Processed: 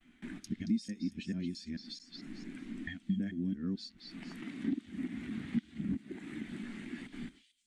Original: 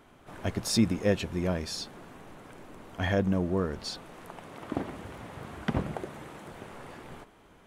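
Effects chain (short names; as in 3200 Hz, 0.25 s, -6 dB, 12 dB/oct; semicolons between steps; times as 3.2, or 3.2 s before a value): local time reversal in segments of 0.221 s; gate with hold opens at -46 dBFS; graphic EQ 125/250/500/1000/2000/4000/8000 Hz -8/+8/-12/-7/+9/+6/+8 dB; compressor 20:1, threshold -41 dBFS, peak gain reduction 25.5 dB; dynamic EQ 230 Hz, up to +7 dB, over -59 dBFS, Q 0.76; on a send: delay with a stepping band-pass 0.225 s, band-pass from 4000 Hz, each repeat 0.7 oct, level -2.5 dB; on the sum: spectral expander 1.5:1; gain +3 dB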